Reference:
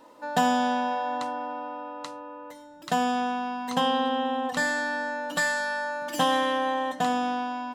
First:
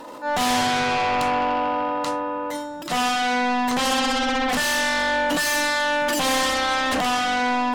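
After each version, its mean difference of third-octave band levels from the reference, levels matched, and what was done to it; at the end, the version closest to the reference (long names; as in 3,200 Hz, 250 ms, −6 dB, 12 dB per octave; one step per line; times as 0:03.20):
8.0 dB: transient designer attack −10 dB, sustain +11 dB
in parallel at −10 dB: sine wavefolder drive 18 dB, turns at −12 dBFS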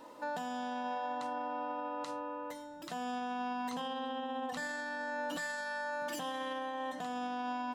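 4.0 dB: downward compressor, threshold −31 dBFS, peak gain reduction 12.5 dB
brickwall limiter −30.5 dBFS, peak gain reduction 11 dB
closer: second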